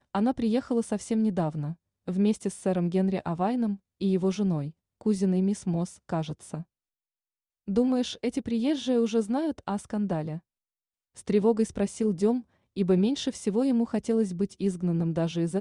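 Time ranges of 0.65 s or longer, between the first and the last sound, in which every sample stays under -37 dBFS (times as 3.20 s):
6.62–7.68 s
10.38–11.18 s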